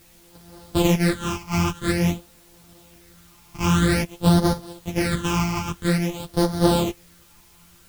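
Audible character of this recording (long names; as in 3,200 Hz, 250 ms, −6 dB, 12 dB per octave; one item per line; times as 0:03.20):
a buzz of ramps at a fixed pitch in blocks of 256 samples
phaser sweep stages 8, 0.5 Hz, lowest notch 500–2,500 Hz
a quantiser's noise floor 10 bits, dither triangular
a shimmering, thickened sound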